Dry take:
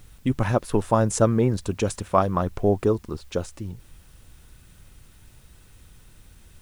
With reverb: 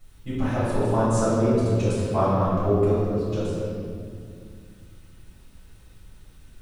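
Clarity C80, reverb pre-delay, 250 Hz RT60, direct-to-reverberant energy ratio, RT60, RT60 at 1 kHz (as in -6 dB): -1.0 dB, 3 ms, 3.1 s, -13.0 dB, 2.2 s, 2.0 s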